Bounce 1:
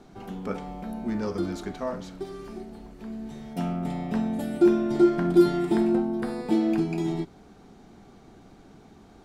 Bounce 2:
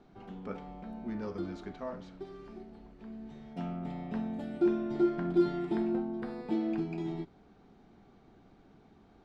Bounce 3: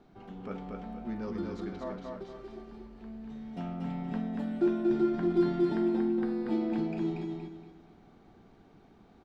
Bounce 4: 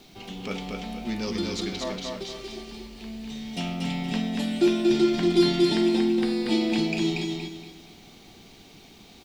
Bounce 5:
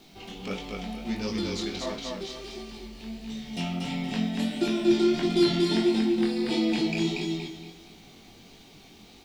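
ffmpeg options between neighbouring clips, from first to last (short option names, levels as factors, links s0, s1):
-af "lowpass=4000,volume=0.376"
-af "aecho=1:1:235|470|705|940:0.708|0.234|0.0771|0.0254"
-af "aexciter=amount=9.1:drive=2.8:freq=2200,volume=2"
-af "flanger=delay=18.5:depth=5.5:speed=1.5,volume=1.19"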